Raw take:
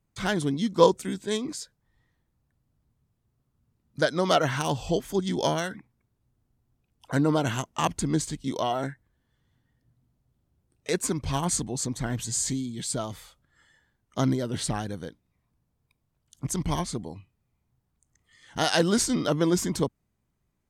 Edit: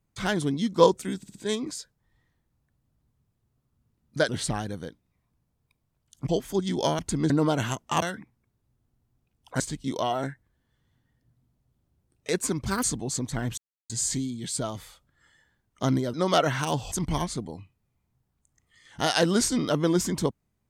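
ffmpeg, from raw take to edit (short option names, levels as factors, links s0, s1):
-filter_complex "[0:a]asplit=15[s0][s1][s2][s3][s4][s5][s6][s7][s8][s9][s10][s11][s12][s13][s14];[s0]atrim=end=1.232[s15];[s1]atrim=start=1.168:end=1.232[s16];[s2]atrim=start=1.168:end=1.232[s17];[s3]atrim=start=1.168:end=4.112[s18];[s4]atrim=start=14.488:end=16.492[s19];[s5]atrim=start=4.888:end=5.592[s20];[s6]atrim=start=7.888:end=8.202[s21];[s7]atrim=start=7.168:end=7.892[s22];[s8]atrim=start=5.588:end=7.172[s23];[s9]atrim=start=8.198:end=11.264[s24];[s10]atrim=start=11.26:end=11.51,asetpts=PTS-STARTPTS,asetrate=62622,aresample=44100,atrim=end_sample=7764,asetpts=PTS-STARTPTS[s25];[s11]atrim=start=11.506:end=12.25,asetpts=PTS-STARTPTS,afade=t=out:st=0.74:d=0.004:c=hsin,apad=pad_dur=0.32[s26];[s12]atrim=start=12.25:end=14.492,asetpts=PTS-STARTPTS,afade=t=in:d=0.004:c=hsin[s27];[s13]atrim=start=4.108:end=4.892[s28];[s14]atrim=start=16.488[s29];[s15][s16]acrossfade=d=0.004:c1=hsin:c2=hsin[s30];[s30][s17]acrossfade=d=0.004:c1=hsin:c2=hsin[s31];[s31][s18]acrossfade=d=0.004:c1=hsin:c2=hsin[s32];[s32][s19]acrossfade=d=0.004:c1=hsin:c2=hsin[s33];[s33][s20]acrossfade=d=0.004:c1=hsin:c2=hsin[s34];[s34][s21]acrossfade=d=0.004:c1=hsin:c2=hsin[s35];[s35][s22]acrossfade=d=0.004:c1=hsin:c2=hsin[s36];[s36][s23]acrossfade=d=0.004:c1=hsin:c2=hsin[s37];[s37][s24]acrossfade=d=0.004:c1=hsin:c2=hsin[s38];[s38][s25]acrossfade=d=0.004:c1=hsin:c2=hsin[s39];[s26][s27]concat=n=2:v=0:a=1[s40];[s39][s40]acrossfade=d=0.004:c1=hsin:c2=hsin[s41];[s41][s28]acrossfade=d=0.004:c1=hsin:c2=hsin[s42];[s42][s29]acrossfade=d=0.004:c1=hsin:c2=hsin"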